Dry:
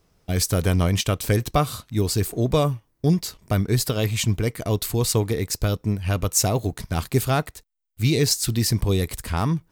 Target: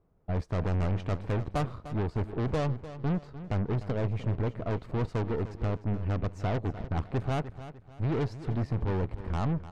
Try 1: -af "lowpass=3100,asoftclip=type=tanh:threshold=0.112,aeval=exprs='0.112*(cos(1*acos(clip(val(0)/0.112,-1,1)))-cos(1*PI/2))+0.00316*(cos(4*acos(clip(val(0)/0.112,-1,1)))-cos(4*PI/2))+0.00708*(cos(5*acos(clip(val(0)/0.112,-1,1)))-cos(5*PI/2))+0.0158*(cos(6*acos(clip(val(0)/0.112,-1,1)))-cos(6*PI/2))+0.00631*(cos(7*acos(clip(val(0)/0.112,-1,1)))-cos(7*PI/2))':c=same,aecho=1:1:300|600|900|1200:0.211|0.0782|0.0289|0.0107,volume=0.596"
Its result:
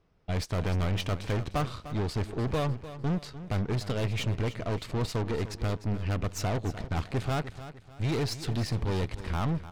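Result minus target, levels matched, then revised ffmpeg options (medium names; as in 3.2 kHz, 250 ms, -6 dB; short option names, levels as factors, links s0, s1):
4 kHz band +10.5 dB
-af "lowpass=1000,asoftclip=type=tanh:threshold=0.112,aeval=exprs='0.112*(cos(1*acos(clip(val(0)/0.112,-1,1)))-cos(1*PI/2))+0.00316*(cos(4*acos(clip(val(0)/0.112,-1,1)))-cos(4*PI/2))+0.00708*(cos(5*acos(clip(val(0)/0.112,-1,1)))-cos(5*PI/2))+0.0158*(cos(6*acos(clip(val(0)/0.112,-1,1)))-cos(6*PI/2))+0.00631*(cos(7*acos(clip(val(0)/0.112,-1,1)))-cos(7*PI/2))':c=same,aecho=1:1:300|600|900|1200:0.211|0.0782|0.0289|0.0107,volume=0.596"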